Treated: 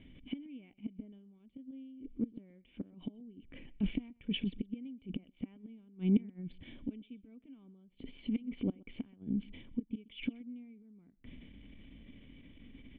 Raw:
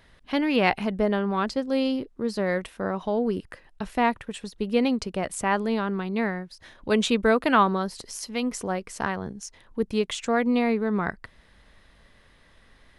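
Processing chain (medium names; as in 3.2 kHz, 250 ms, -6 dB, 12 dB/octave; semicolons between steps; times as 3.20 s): distance through air 81 m; inverted gate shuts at -19 dBFS, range -39 dB; transient shaper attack -11 dB, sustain +5 dB; cascade formant filter i; peaking EQ 330 Hz -3 dB; on a send: delay 127 ms -23.5 dB; on the sum: trim +15.5 dB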